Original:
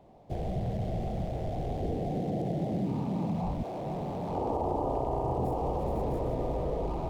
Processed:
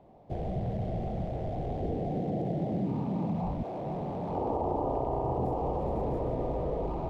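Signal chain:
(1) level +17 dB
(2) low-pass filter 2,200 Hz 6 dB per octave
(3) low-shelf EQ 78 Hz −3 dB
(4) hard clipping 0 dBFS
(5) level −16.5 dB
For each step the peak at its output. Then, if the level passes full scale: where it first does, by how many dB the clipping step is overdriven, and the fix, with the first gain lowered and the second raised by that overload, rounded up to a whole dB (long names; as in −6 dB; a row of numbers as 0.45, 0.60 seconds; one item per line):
−1.5, −2.0, −2.0, −2.0, −18.5 dBFS
no step passes full scale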